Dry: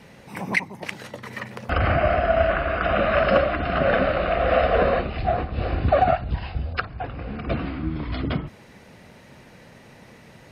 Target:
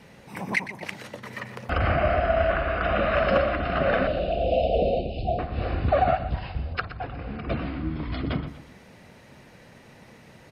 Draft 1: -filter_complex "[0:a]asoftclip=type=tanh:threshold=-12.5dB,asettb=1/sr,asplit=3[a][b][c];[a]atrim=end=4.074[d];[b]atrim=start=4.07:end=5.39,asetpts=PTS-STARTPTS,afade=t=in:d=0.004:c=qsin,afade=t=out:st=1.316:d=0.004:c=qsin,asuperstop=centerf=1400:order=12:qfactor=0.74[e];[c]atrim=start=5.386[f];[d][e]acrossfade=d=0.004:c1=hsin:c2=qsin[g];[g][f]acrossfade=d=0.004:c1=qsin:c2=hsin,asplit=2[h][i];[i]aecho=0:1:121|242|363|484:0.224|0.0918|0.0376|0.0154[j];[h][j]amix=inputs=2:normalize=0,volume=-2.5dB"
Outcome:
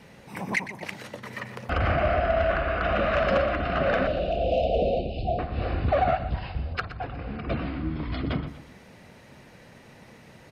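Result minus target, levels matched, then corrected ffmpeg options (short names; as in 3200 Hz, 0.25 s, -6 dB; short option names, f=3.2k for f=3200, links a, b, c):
soft clip: distortion +11 dB
-filter_complex "[0:a]asoftclip=type=tanh:threshold=-5.5dB,asettb=1/sr,asplit=3[a][b][c];[a]atrim=end=4.074[d];[b]atrim=start=4.07:end=5.39,asetpts=PTS-STARTPTS,afade=t=in:d=0.004:c=qsin,afade=t=out:st=1.316:d=0.004:c=qsin,asuperstop=centerf=1400:order=12:qfactor=0.74[e];[c]atrim=start=5.386[f];[d][e]acrossfade=d=0.004:c1=hsin:c2=qsin[g];[g][f]acrossfade=d=0.004:c1=qsin:c2=hsin,asplit=2[h][i];[i]aecho=0:1:121|242|363|484:0.224|0.0918|0.0376|0.0154[j];[h][j]amix=inputs=2:normalize=0,volume=-2.5dB"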